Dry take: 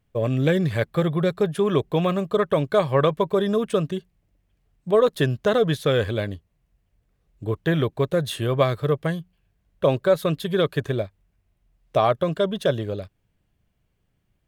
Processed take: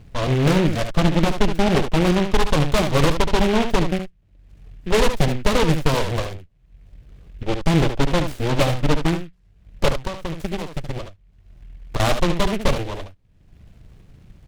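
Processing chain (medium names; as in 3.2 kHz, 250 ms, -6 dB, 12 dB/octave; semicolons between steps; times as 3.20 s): 9.88–12.00 s: compression 20:1, threshold -26 dBFS, peak gain reduction 14.5 dB; dynamic bell 2.9 kHz, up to -4 dB, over -39 dBFS, Q 1.1; upward compressor, threshold -28 dBFS; Chebyshev shaper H 8 -7 dB, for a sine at -6 dBFS; tilt EQ -2 dB/octave; on a send: delay 72 ms -8 dB; on the sum: delay time shaken by noise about 2.1 kHz, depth 0.095 ms; trim -5.5 dB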